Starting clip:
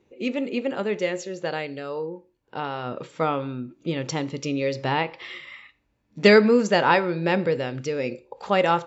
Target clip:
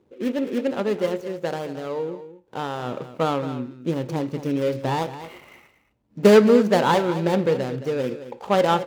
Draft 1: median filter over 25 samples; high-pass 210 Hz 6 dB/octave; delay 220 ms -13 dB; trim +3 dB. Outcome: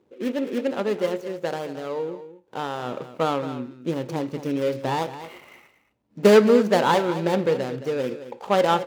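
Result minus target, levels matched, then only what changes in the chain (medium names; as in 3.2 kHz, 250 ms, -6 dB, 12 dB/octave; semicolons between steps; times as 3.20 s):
125 Hz band -2.5 dB
change: high-pass 69 Hz 6 dB/octave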